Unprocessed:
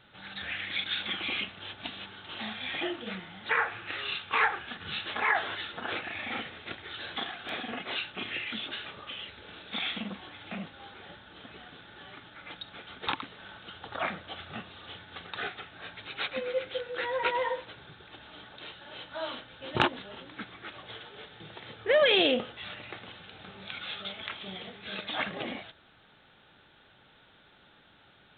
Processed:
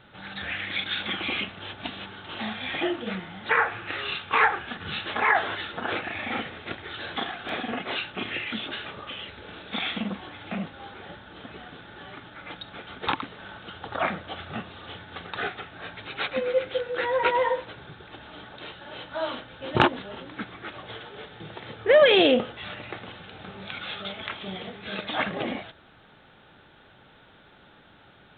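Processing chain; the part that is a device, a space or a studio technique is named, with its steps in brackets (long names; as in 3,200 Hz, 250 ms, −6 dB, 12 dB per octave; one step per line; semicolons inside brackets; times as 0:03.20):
behind a face mask (high-shelf EQ 2,300 Hz −8 dB)
level +7.5 dB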